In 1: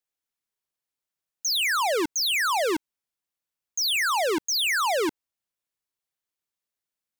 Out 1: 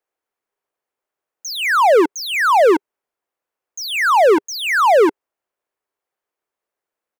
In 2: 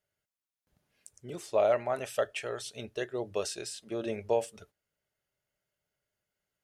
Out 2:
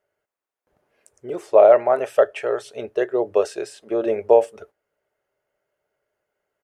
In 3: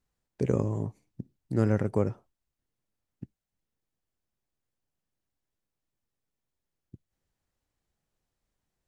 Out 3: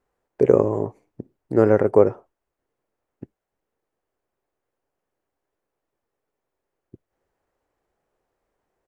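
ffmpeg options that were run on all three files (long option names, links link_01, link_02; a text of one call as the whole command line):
ffmpeg -i in.wav -af "firequalizer=gain_entry='entry(170,0);entry(400,15);entry(3700,-2)':delay=0.05:min_phase=1" out.wav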